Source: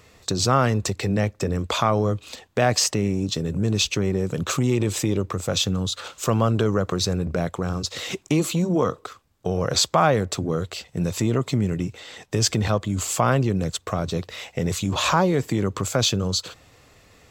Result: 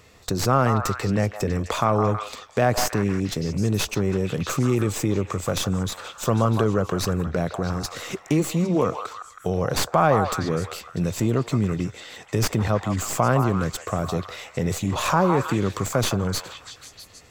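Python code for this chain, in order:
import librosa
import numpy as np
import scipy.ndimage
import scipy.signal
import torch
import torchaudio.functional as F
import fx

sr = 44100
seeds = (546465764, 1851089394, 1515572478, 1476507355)

y = fx.tracing_dist(x, sr, depth_ms=0.079)
y = fx.dynamic_eq(y, sr, hz=3600.0, q=1.1, threshold_db=-40.0, ratio=4.0, max_db=-7)
y = fx.echo_stepped(y, sr, ms=161, hz=960.0, octaves=0.7, feedback_pct=70, wet_db=-3.5)
y = fx.slew_limit(y, sr, full_power_hz=570.0)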